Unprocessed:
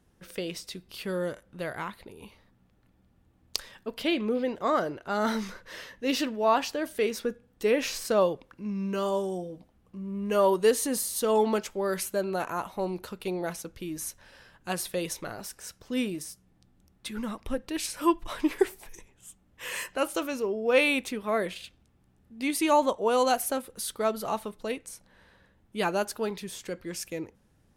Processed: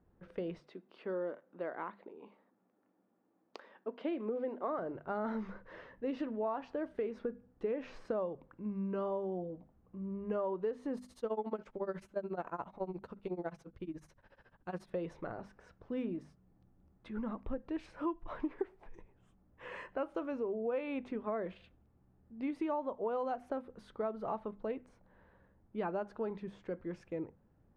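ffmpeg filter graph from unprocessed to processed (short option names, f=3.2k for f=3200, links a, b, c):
-filter_complex "[0:a]asettb=1/sr,asplit=3[a][b][c];[a]atrim=end=0.604[d];[b]atrim=start=0.6:end=4.79,asetpts=PTS-STARTPTS,afade=t=in:d=0.004:c=qsin,afade=t=out:st=4.186:d=0.004:c=qsin,highpass=f=240:w=0.5412,highpass=f=240:w=1.3066,highshelf=f=12k:g=-10[e];[c]atrim=start=4.786[f];[d][e]acrossfade=d=0.004:c1=hsin:c2=qsin[g];[g][f]acrossfade=d=0.004:c1=qsin:c2=hsin,asettb=1/sr,asplit=3[h][i][j];[h]atrim=end=10.974[k];[i]atrim=start=10.97:end=14.9,asetpts=PTS-STARTPTS,afade=t=in:d=0.004:c=qsin,afade=t=out:st=3.926:d=0.004:c=qsin,highshelf=f=3.9k:g=10,tremolo=f=14:d=0.94[l];[j]atrim=start=14.896[m];[k][l]acrossfade=d=0.004:c1=hsin:c2=qsin[n];[n][m]acrossfade=d=0.004:c1=qsin:c2=hsin,lowpass=1.2k,bandreject=f=50:t=h:w=6,bandreject=f=100:t=h:w=6,bandreject=f=150:t=h:w=6,bandreject=f=200:t=h:w=6,bandreject=f=250:t=h:w=6,acompressor=threshold=-30dB:ratio=6,volume=-3dB"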